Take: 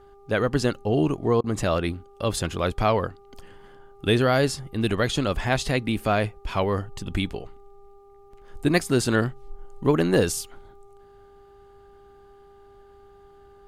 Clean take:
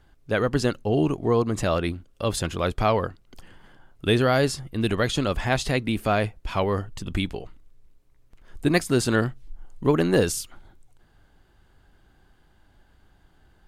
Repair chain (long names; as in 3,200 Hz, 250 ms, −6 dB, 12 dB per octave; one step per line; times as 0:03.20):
hum removal 399.5 Hz, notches 3
repair the gap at 0:01.41, 28 ms